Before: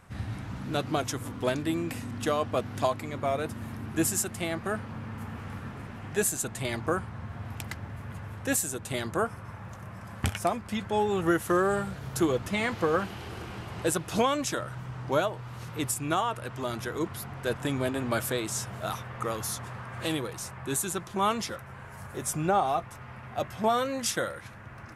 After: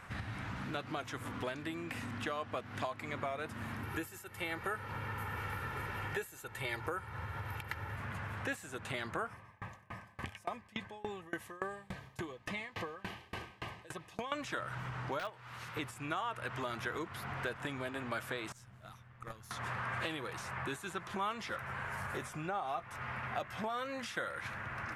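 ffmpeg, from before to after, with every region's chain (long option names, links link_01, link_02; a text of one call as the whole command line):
ffmpeg -i in.wav -filter_complex "[0:a]asettb=1/sr,asplit=3[link_01][link_02][link_03];[link_01]atrim=end=3.834[link_04];[link_02]atrim=start=3.83:end=7.96,asetpts=PTS-STARTPTS,afade=type=in:duration=0.004:curve=qsin,afade=type=out:start_time=4.126:duration=0.004:curve=qsin,equalizer=frequency=12000:width=2.4:gain=15,aecho=1:1:2.2:0.6,atrim=end_sample=182133[link_05];[link_03]atrim=start=7.956[link_06];[link_04][link_05]acrossfade=duration=0.004:curve1=hsin:curve2=qsin[link_07];[link_07][link_06]acrossfade=duration=0.004:curve1=qsin:curve2=hsin,asettb=1/sr,asplit=3[link_08][link_09][link_10];[link_08]atrim=end=9.334[link_11];[link_09]atrim=start=9.33:end=14.32,asetpts=PTS-STARTPTS,afade=type=in:duration=0.004:curve=qsin,afade=type=out:start_time=4.986:duration=0.004:curve=qsin,acompressor=threshold=-31dB:ratio=2:attack=3.2:release=140:knee=1:detection=peak,asuperstop=centerf=1400:order=20:qfactor=6.1,aeval=exprs='val(0)*pow(10,-30*if(lt(mod(3.5*n/s,1),2*abs(3.5)/1000),1-mod(3.5*n/s,1)/(2*abs(3.5)/1000),(mod(3.5*n/s,1)-2*abs(3.5)/1000)/(1-2*abs(3.5)/1000))/20)':channel_layout=same[link_12];[link_10]atrim=start=14.316[link_13];[link_11][link_12]acrossfade=duration=0.004:curve1=hsin:curve2=qsin[link_14];[link_14][link_13]acrossfade=duration=0.004:curve1=qsin:curve2=hsin,asettb=1/sr,asplit=3[link_15][link_16][link_17];[link_15]atrim=end=15.194[link_18];[link_16]atrim=start=15.19:end=15.77,asetpts=PTS-STARTPTS,afade=type=in:duration=0.004:curve=qsin,afade=type=out:start_time=0.576:duration=0.004:curve=qsin,agate=range=-8dB:threshold=-32dB:ratio=16:release=100:detection=peak,tiltshelf=frequency=840:gain=-3.5,aeval=exprs='(mod(8.41*val(0)+1,2)-1)/8.41':channel_layout=same[link_19];[link_17]atrim=start=15.766[link_20];[link_18][link_19]acrossfade=duration=0.004:curve1=hsin:curve2=qsin[link_21];[link_21][link_20]acrossfade=duration=0.004:curve1=qsin:curve2=hsin,asettb=1/sr,asplit=3[link_22][link_23][link_24];[link_22]atrim=end=18.524[link_25];[link_23]atrim=start=18.52:end=19.51,asetpts=PTS-STARTPTS,afade=type=in:duration=0.004:curve=qsin,afade=type=out:start_time=0.986:duration=0.004:curve=qsin,agate=range=-24dB:threshold=-28dB:ratio=16:release=100:detection=peak,bass=frequency=250:gain=13,treble=frequency=4000:gain=5,aeval=exprs='(tanh(70.8*val(0)+0.65)-tanh(0.65))/70.8':channel_layout=same[link_26];[link_24]atrim=start=19.506[link_27];[link_25][link_26]acrossfade=duration=0.004:curve1=hsin:curve2=qsin[link_28];[link_28][link_27]acrossfade=duration=0.004:curve1=qsin:curve2=hsin,acompressor=threshold=-38dB:ratio=12,equalizer=frequency=1800:width_type=o:width=2.5:gain=10,acrossover=split=3800[link_29][link_30];[link_30]acompressor=threshold=-49dB:ratio=4:attack=1:release=60[link_31];[link_29][link_31]amix=inputs=2:normalize=0,volume=-1.5dB" out.wav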